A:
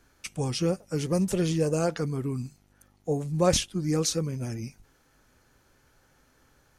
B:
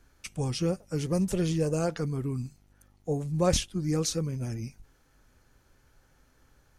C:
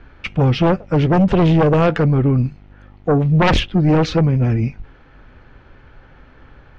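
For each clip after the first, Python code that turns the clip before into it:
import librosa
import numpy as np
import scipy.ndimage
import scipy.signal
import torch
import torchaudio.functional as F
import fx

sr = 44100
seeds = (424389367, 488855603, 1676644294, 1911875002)

y1 = fx.low_shelf(x, sr, hz=88.0, db=9.5)
y1 = y1 * 10.0 ** (-3.0 / 20.0)
y2 = scipy.signal.sosfilt(scipy.signal.butter(4, 3100.0, 'lowpass', fs=sr, output='sos'), y1)
y2 = fx.fold_sine(y2, sr, drive_db=11, ceiling_db=-13.0)
y2 = y2 * 10.0 ** (3.5 / 20.0)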